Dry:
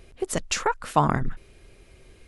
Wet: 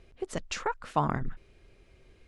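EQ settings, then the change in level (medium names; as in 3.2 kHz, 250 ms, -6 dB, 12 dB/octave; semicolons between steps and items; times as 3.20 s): distance through air 69 m; -6.5 dB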